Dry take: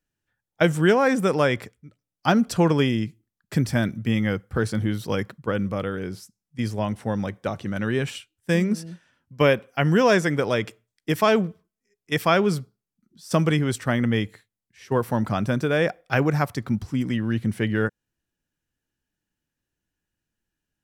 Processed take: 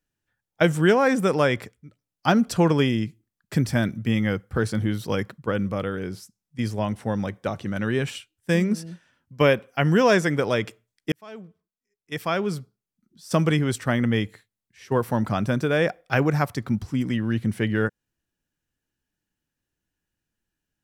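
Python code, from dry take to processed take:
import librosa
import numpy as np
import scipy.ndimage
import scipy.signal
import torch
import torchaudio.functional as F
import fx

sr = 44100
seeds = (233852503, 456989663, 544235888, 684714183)

y = fx.edit(x, sr, fx.fade_in_span(start_s=11.12, length_s=2.36), tone=tone)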